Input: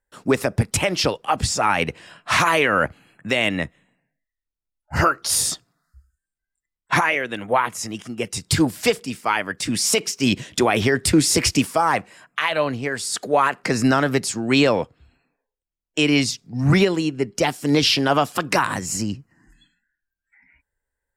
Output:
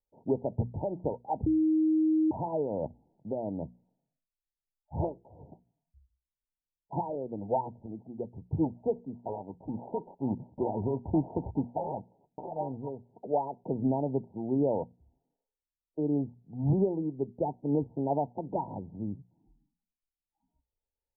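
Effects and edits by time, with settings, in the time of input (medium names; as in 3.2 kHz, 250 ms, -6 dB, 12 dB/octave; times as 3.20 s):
1.46–2.31 s: bleep 314 Hz -12 dBFS
7.09–7.86 s: tilt EQ -2 dB/octave
9.14–12.89 s: sorted samples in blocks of 32 samples
whole clip: Chebyshev low-pass 940 Hz, order 10; hum notches 60/120/180/240 Hz; trim -9 dB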